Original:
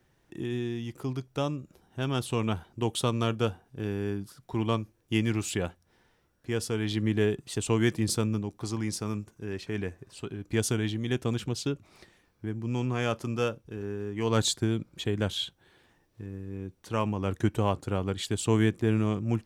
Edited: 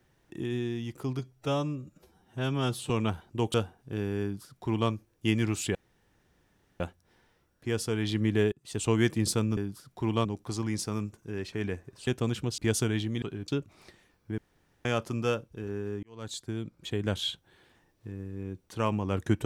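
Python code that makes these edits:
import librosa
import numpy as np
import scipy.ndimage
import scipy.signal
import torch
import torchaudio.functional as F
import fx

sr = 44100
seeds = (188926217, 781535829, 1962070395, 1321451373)

y = fx.edit(x, sr, fx.stretch_span(start_s=1.19, length_s=1.14, factor=1.5),
    fx.cut(start_s=2.97, length_s=0.44),
    fx.duplicate(start_s=4.09, length_s=0.68, to_s=8.39),
    fx.insert_room_tone(at_s=5.62, length_s=1.05),
    fx.fade_in_span(start_s=7.34, length_s=0.32),
    fx.swap(start_s=10.21, length_s=0.26, other_s=11.11, other_length_s=0.51),
    fx.room_tone_fill(start_s=12.52, length_s=0.47),
    fx.fade_in_span(start_s=14.17, length_s=1.21), tone=tone)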